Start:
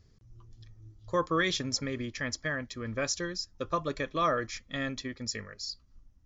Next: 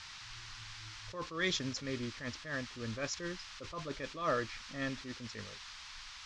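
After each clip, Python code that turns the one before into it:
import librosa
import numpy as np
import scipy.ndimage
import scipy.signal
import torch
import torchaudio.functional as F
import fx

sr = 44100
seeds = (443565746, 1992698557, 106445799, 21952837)

y = fx.env_lowpass(x, sr, base_hz=360.0, full_db=-25.0)
y = fx.dmg_noise_band(y, sr, seeds[0], low_hz=940.0, high_hz=5700.0, level_db=-47.0)
y = fx.attack_slew(y, sr, db_per_s=120.0)
y = y * librosa.db_to_amplitude(-3.0)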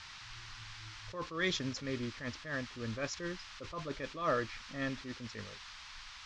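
y = fx.high_shelf(x, sr, hz=5100.0, db=-6.5)
y = y * librosa.db_to_amplitude(1.0)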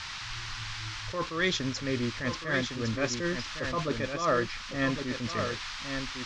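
y = fx.rider(x, sr, range_db=3, speed_s=0.5)
y = y + 10.0 ** (-7.0 / 20.0) * np.pad(y, (int(1108 * sr / 1000.0), 0))[:len(y)]
y = y * librosa.db_to_amplitude(8.0)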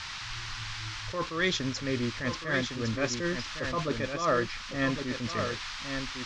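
y = x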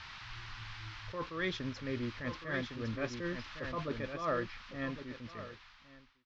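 y = fx.fade_out_tail(x, sr, length_s=1.95)
y = fx.air_absorb(y, sr, metres=180.0)
y = y * librosa.db_to_amplitude(-6.5)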